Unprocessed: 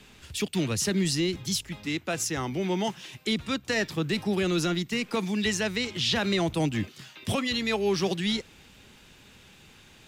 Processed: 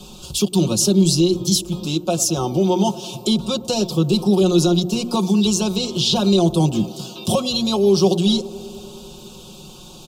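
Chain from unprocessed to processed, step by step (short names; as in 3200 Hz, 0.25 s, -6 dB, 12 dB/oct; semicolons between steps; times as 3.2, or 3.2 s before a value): notches 60/120/180/240/300/360 Hz; comb 5.5 ms, depth 82%; in parallel at +3 dB: compressor, threshold -35 dBFS, peak gain reduction 16.5 dB; on the sum: Butterworth band-stop 1900 Hz, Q 0.79; band-limited delay 0.103 s, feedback 81%, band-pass 470 Hz, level -17 dB; gain +5.5 dB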